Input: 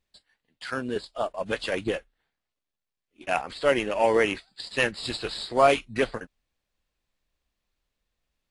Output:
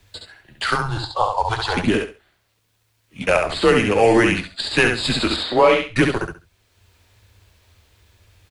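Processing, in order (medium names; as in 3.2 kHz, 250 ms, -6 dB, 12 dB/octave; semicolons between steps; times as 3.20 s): 5.36–5.96 s: three-band isolator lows -15 dB, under 430 Hz, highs -16 dB, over 4.3 kHz; in parallel at 0 dB: compression, threshold -30 dBFS, peak gain reduction 14.5 dB; on the sum: frequency shift -110 Hz; 0.75–1.77 s: FFT filter 120 Hz 0 dB, 220 Hz -25 dB, 580 Hz -7 dB, 840 Hz +11 dB, 1.5 kHz -5 dB, 2.6 kHz -13 dB, 4 kHz +1 dB, 6.3 kHz -4 dB, 12 kHz -11 dB; on a send: feedback delay 68 ms, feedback 20%, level -5 dB; on the sum: three bands compressed up and down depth 40%; trim +5.5 dB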